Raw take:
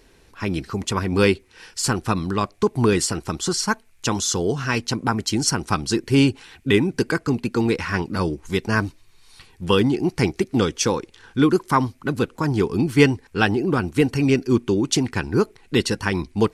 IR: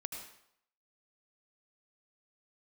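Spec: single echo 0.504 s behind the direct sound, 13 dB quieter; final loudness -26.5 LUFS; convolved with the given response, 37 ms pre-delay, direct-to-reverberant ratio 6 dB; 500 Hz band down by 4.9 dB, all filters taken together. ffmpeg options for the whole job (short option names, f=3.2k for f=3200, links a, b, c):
-filter_complex "[0:a]equalizer=f=500:t=o:g=-6.5,aecho=1:1:504:0.224,asplit=2[a][b];[1:a]atrim=start_sample=2205,adelay=37[c];[b][c]afir=irnorm=-1:irlink=0,volume=-5dB[d];[a][d]amix=inputs=2:normalize=0,volume=-4.5dB"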